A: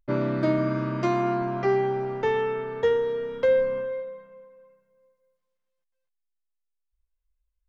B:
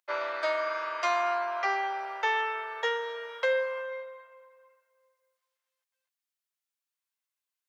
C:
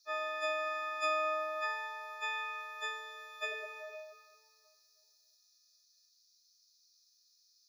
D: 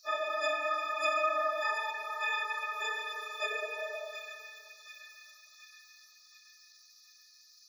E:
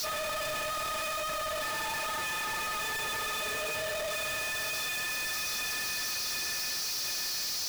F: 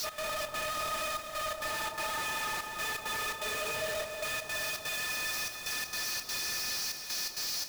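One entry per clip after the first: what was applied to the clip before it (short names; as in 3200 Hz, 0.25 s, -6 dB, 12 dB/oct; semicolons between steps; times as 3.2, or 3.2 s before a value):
Bessel high-pass 1000 Hz, order 6; gain +5.5 dB
frequency quantiser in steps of 6 st; band noise 4100–6200 Hz -61 dBFS; notch comb 450 Hz; gain -8 dB
phase scrambler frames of 50 ms; in parallel at +3 dB: compressor, threshold -47 dBFS, peak gain reduction 17.5 dB; on the sum: split-band echo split 1600 Hz, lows 0.135 s, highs 0.728 s, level -8.5 dB; gain +1 dB
infinite clipping; gain +3 dB
step gate "x.xxx.xxxxxxx..x" 167 bpm -12 dB; echo with dull and thin repeats by turns 0.194 s, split 1200 Hz, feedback 61%, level -5 dB; gain -1.5 dB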